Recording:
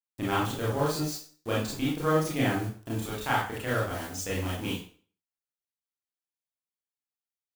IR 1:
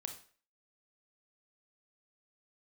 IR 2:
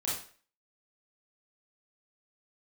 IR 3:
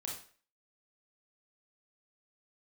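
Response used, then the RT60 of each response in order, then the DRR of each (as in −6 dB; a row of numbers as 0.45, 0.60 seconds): 2; 0.45, 0.45, 0.45 seconds; 5.0, −7.0, −2.0 decibels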